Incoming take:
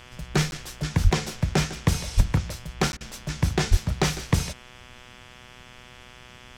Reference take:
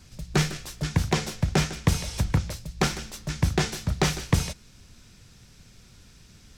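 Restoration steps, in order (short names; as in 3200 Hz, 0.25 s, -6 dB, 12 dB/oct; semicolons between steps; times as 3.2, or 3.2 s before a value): de-hum 124 Hz, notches 28; 1.03–1.15 HPF 140 Hz 24 dB/oct; 2.16–2.28 HPF 140 Hz 24 dB/oct; 3.7–3.82 HPF 140 Hz 24 dB/oct; interpolate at 0.51/2.92, 11 ms; interpolate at 2.97, 36 ms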